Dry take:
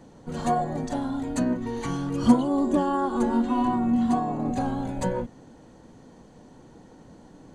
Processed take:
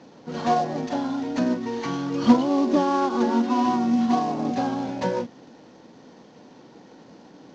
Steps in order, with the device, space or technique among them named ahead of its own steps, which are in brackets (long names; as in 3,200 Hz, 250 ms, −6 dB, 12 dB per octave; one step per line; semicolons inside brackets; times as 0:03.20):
early wireless headset (high-pass filter 200 Hz 12 dB per octave; variable-slope delta modulation 32 kbit/s)
level +3.5 dB